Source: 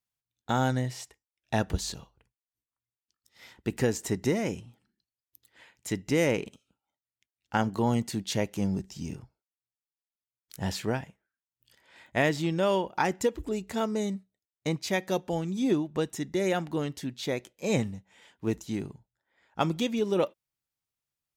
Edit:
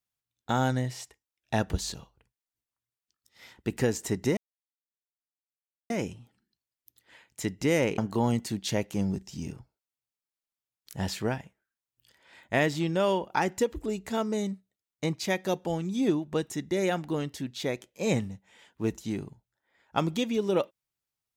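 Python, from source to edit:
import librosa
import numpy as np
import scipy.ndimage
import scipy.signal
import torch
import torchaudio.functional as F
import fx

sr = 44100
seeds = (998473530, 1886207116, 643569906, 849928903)

y = fx.edit(x, sr, fx.insert_silence(at_s=4.37, length_s=1.53),
    fx.cut(start_s=6.45, length_s=1.16), tone=tone)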